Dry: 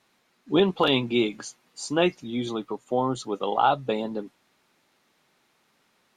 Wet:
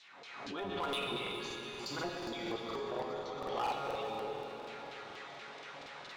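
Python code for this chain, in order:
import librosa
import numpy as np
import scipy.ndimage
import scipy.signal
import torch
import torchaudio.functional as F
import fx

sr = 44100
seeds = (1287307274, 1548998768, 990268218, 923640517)

y = fx.octave_divider(x, sr, octaves=1, level_db=-4.0)
y = fx.recorder_agc(y, sr, target_db=-14.0, rise_db_per_s=53.0, max_gain_db=30)
y = scipy.signal.sosfilt(scipy.signal.butter(4, 8000.0, 'lowpass', fs=sr, output='sos'), y)
y = fx.low_shelf(y, sr, hz=140.0, db=7.0)
y = fx.comb_fb(y, sr, f0_hz=140.0, decay_s=0.61, harmonics='all', damping=0.0, mix_pct=80)
y = fx.filter_lfo_bandpass(y, sr, shape='saw_down', hz=4.3, low_hz=480.0, high_hz=4400.0, q=1.9)
y = np.clip(y, -10.0 ** (-36.0 / 20.0), 10.0 ** (-36.0 / 20.0))
y = fx.high_shelf(y, sr, hz=6300.0, db=-9.5, at=(1.09, 3.54))
y = fx.echo_split(y, sr, split_hz=2800.0, low_ms=144, high_ms=413, feedback_pct=52, wet_db=-11.0)
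y = fx.rev_plate(y, sr, seeds[0], rt60_s=4.4, hf_ratio=0.85, predelay_ms=0, drr_db=0.5)
y = fx.buffer_crackle(y, sr, first_s=0.98, period_s=0.24, block=2048, kind='repeat')
y = fx.pre_swell(y, sr, db_per_s=37.0)
y = y * librosa.db_to_amplitude(2.5)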